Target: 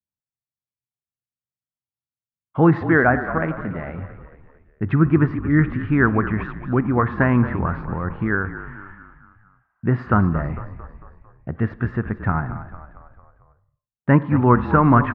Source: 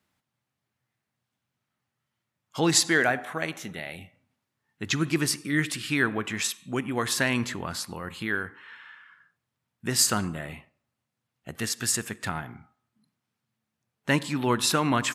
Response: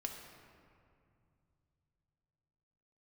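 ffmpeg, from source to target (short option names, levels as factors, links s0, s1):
-filter_complex "[0:a]lowpass=f=1700:w=0.5412,lowpass=f=1700:w=1.3066,aemphasis=mode=reproduction:type=bsi,agate=range=0.0224:threshold=0.00316:ratio=3:detection=peak,adynamicequalizer=threshold=0.00794:dfrequency=1200:dqfactor=1.7:tfrequency=1200:tqfactor=1.7:attack=5:release=100:ratio=0.375:range=3:mode=boostabove:tftype=bell,asplit=6[s0][s1][s2][s3][s4][s5];[s1]adelay=225,afreqshift=-44,volume=0.237[s6];[s2]adelay=450,afreqshift=-88,volume=0.126[s7];[s3]adelay=675,afreqshift=-132,volume=0.0668[s8];[s4]adelay=900,afreqshift=-176,volume=0.0355[s9];[s5]adelay=1125,afreqshift=-220,volume=0.0186[s10];[s0][s6][s7][s8][s9][s10]amix=inputs=6:normalize=0,volume=1.88"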